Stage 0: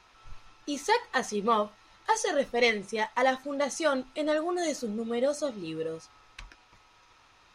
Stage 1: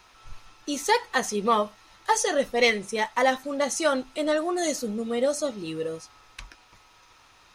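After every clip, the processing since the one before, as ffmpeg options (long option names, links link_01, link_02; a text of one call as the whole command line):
ffmpeg -i in.wav -af "highshelf=frequency=8900:gain=12,volume=3dB" out.wav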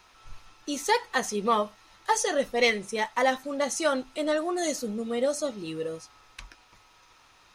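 ffmpeg -i in.wav -af "bandreject=frequency=50:width_type=h:width=6,bandreject=frequency=100:width_type=h:width=6,volume=-2dB" out.wav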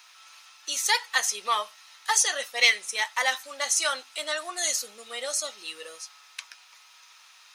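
ffmpeg -i in.wav -af "highpass=660,tiltshelf=frequency=1100:gain=-9" out.wav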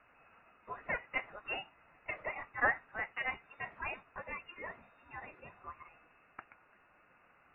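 ffmpeg -i in.wav -af "afftfilt=real='re*(1-between(b*sr/4096,280,1000))':imag='im*(1-between(b*sr/4096,280,1000))':win_size=4096:overlap=0.75,aderivative,lowpass=frequency=3300:width_type=q:width=0.5098,lowpass=frequency=3300:width_type=q:width=0.6013,lowpass=frequency=3300:width_type=q:width=0.9,lowpass=frequency=3300:width_type=q:width=2.563,afreqshift=-3900,volume=1dB" out.wav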